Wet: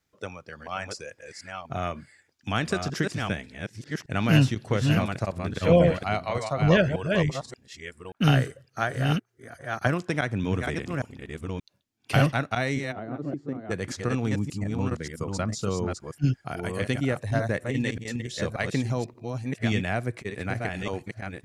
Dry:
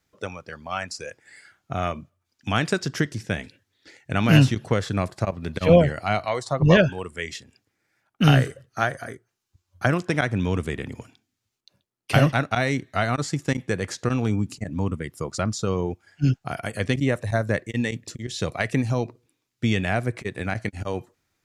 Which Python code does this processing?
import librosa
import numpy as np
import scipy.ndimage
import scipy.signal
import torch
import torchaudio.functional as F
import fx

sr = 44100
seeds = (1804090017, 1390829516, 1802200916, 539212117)

y = fx.reverse_delay(x, sr, ms=580, wet_db=-4.5)
y = fx.bandpass_q(y, sr, hz=320.0, q=1.7, at=(12.91, 13.7), fade=0.02)
y = y * librosa.db_to_amplitude(-4.0)